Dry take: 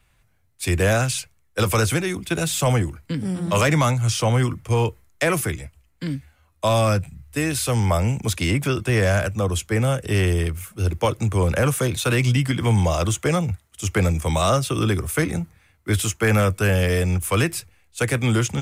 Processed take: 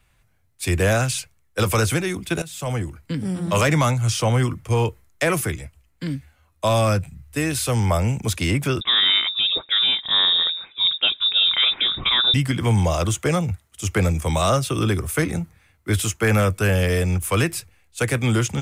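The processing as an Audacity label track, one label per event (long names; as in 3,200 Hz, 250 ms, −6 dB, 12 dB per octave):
2.420000	3.150000	fade in linear, from −17 dB
8.810000	12.340000	voice inversion scrambler carrier 3,700 Hz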